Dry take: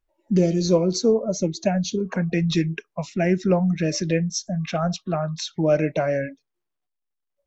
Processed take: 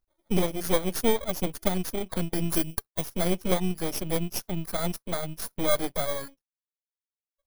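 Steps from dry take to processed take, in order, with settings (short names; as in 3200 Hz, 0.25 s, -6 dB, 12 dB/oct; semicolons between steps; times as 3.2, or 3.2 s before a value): FFT order left unsorted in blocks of 16 samples; reverb removal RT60 1.2 s; 2.54–3.1 high shelf 4500 Hz +9.5 dB; half-wave rectifier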